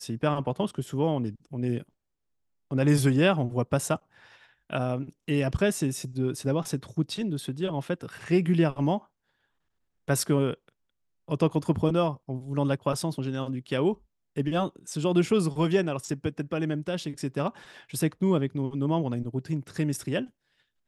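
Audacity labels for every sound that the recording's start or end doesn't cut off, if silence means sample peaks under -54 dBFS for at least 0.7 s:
2.710000	9.060000	sound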